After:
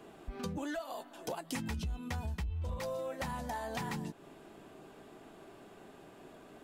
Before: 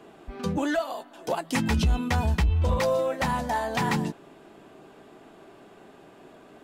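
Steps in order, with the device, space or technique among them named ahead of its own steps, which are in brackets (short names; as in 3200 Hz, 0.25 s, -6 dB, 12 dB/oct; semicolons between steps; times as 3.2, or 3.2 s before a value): ASMR close-microphone chain (low shelf 100 Hz +6 dB; compressor 5:1, threshold -32 dBFS, peak gain reduction 15.5 dB; high shelf 7100 Hz +6.5 dB); gain -4.5 dB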